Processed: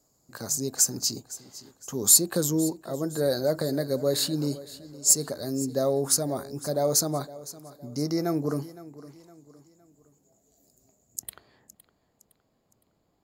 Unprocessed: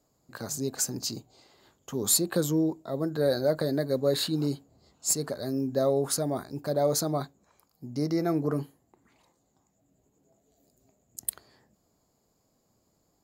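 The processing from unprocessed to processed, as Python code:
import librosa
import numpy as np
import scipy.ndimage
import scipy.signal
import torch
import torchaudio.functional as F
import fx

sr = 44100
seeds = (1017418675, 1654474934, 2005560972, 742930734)

y = fx.high_shelf_res(x, sr, hz=4400.0, db=fx.steps((0.0, 6.0), (11.21, -8.0)), q=1.5)
y = fx.echo_feedback(y, sr, ms=512, feedback_pct=40, wet_db=-17.5)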